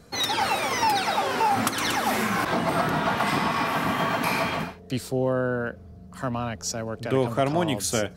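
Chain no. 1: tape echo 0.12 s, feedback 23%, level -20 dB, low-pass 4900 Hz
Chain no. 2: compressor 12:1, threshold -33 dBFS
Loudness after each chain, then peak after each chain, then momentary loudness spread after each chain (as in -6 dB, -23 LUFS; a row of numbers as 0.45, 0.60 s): -25.0, -36.5 LUFS; -8.5, -21.0 dBFS; 8, 4 LU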